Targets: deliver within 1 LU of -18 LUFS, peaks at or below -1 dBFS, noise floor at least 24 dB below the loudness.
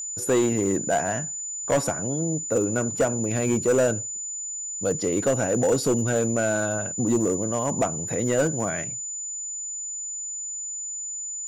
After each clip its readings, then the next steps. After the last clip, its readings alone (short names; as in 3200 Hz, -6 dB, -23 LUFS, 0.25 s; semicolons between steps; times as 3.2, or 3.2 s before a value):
clipped 1.3%; flat tops at -15.5 dBFS; steady tone 7000 Hz; tone level -30 dBFS; loudness -25.0 LUFS; peak -15.5 dBFS; loudness target -18.0 LUFS
-> clip repair -15.5 dBFS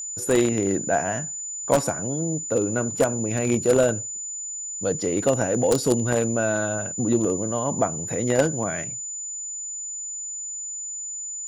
clipped 0.0%; steady tone 7000 Hz; tone level -30 dBFS
-> notch 7000 Hz, Q 30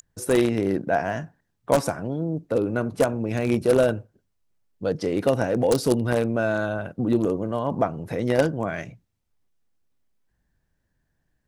steady tone none; loudness -24.0 LUFS; peak -6.0 dBFS; loudness target -18.0 LUFS
-> gain +6 dB; limiter -1 dBFS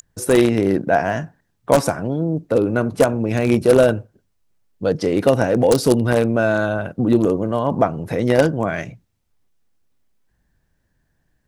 loudness -18.5 LUFS; peak -1.0 dBFS; noise floor -68 dBFS